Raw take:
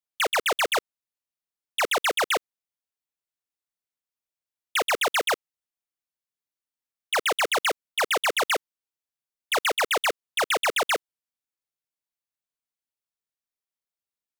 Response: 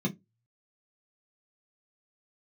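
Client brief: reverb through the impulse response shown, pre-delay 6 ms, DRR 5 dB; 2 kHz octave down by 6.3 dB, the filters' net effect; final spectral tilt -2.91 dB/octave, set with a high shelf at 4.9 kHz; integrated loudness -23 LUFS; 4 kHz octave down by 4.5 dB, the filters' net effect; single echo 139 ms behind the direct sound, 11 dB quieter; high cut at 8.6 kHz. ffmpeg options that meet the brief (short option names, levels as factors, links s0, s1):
-filter_complex "[0:a]lowpass=8600,equalizer=f=2000:t=o:g=-8,equalizer=f=4000:t=o:g=-6.5,highshelf=f=4900:g=8.5,aecho=1:1:139:0.282,asplit=2[s0][s1];[1:a]atrim=start_sample=2205,adelay=6[s2];[s1][s2]afir=irnorm=-1:irlink=0,volume=0.316[s3];[s0][s3]amix=inputs=2:normalize=0,volume=1.41"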